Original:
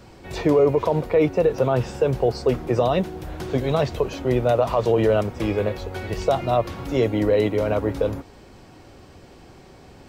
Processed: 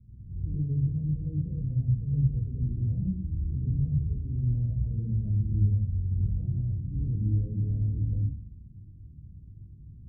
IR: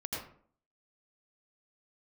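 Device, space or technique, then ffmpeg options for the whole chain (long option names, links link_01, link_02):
club heard from the street: -filter_complex "[0:a]alimiter=limit=-15.5dB:level=0:latency=1:release=14,lowpass=frequency=160:width=0.5412,lowpass=frequency=160:width=1.3066[link_01];[1:a]atrim=start_sample=2205[link_02];[link_01][link_02]afir=irnorm=-1:irlink=0"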